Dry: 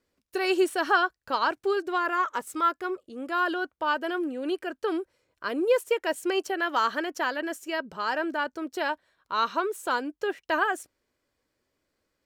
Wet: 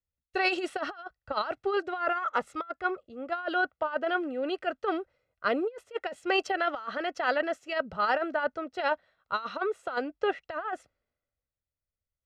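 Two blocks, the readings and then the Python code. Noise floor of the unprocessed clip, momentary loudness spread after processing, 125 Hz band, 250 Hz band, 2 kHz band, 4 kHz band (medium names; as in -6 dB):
-80 dBFS, 8 LU, no reading, -4.5 dB, -2.5 dB, -3.5 dB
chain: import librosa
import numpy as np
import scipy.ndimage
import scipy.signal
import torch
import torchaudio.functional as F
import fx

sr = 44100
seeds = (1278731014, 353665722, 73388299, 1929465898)

y = scipy.signal.sosfilt(scipy.signal.butter(2, 3500.0, 'lowpass', fs=sr, output='sos'), x)
y = y + 0.56 * np.pad(y, (int(1.5 * sr / 1000.0), 0))[:len(y)]
y = fx.over_compress(y, sr, threshold_db=-28.0, ratio=-0.5)
y = fx.band_widen(y, sr, depth_pct=70)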